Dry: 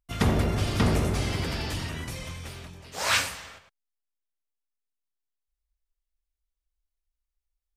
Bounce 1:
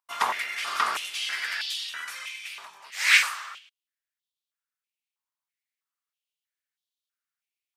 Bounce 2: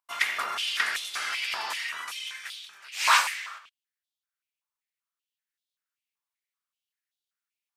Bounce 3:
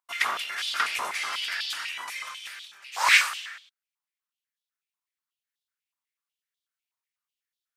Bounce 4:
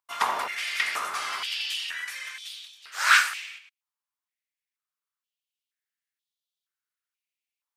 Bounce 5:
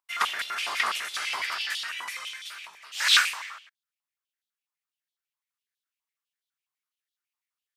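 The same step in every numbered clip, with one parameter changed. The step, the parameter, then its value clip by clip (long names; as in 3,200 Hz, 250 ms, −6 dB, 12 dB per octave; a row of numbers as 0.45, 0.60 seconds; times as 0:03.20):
high-pass on a step sequencer, speed: 3.1, 5.2, 8.1, 2.1, 12 Hertz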